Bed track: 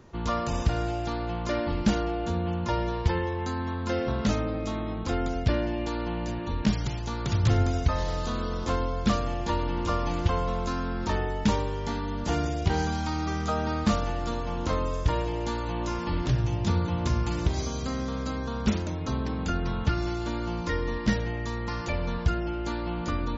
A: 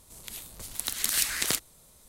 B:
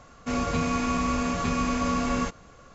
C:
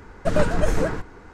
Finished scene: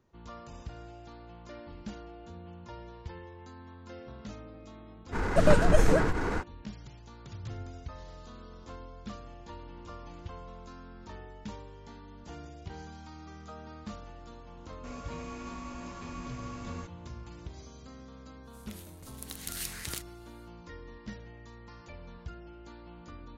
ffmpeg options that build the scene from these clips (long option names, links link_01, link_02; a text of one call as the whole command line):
ffmpeg -i bed.wav -i cue0.wav -i cue1.wav -i cue2.wav -filter_complex "[0:a]volume=-18dB[link_01];[3:a]acompressor=mode=upward:threshold=-18dB:ratio=4:attack=0.3:release=62:knee=2.83:detection=peak[link_02];[1:a]bandreject=frequency=7700:width=29[link_03];[link_02]atrim=end=1.33,asetpts=PTS-STARTPTS,volume=-1dB,afade=type=in:duration=0.05,afade=type=out:start_time=1.28:duration=0.05,adelay=5110[link_04];[2:a]atrim=end=2.74,asetpts=PTS-STARTPTS,volume=-16.5dB,afade=type=in:duration=0.004:curve=hsin,afade=type=out:start_time=2.736:duration=0.004:curve=hsin,adelay=14570[link_05];[link_03]atrim=end=2.08,asetpts=PTS-STARTPTS,volume=-11.5dB,afade=type=in:duration=0.1,afade=type=out:start_time=1.98:duration=0.1,adelay=18430[link_06];[link_01][link_04][link_05][link_06]amix=inputs=4:normalize=0" out.wav